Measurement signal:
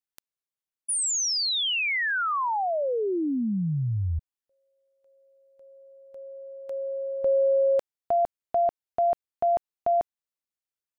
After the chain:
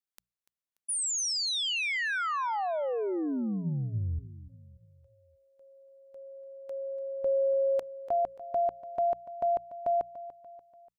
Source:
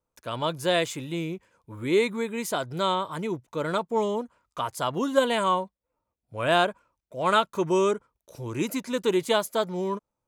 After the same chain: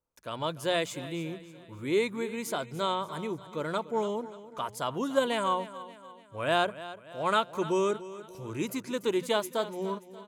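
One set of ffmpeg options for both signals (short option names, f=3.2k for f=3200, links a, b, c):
-filter_complex "[0:a]bandreject=f=60:t=h:w=6,bandreject=f=120:t=h:w=6,bandreject=f=180:t=h:w=6,asplit=2[a][b];[b]aecho=0:1:291|582|873|1164:0.168|0.0789|0.0371|0.0174[c];[a][c]amix=inputs=2:normalize=0,volume=-4.5dB"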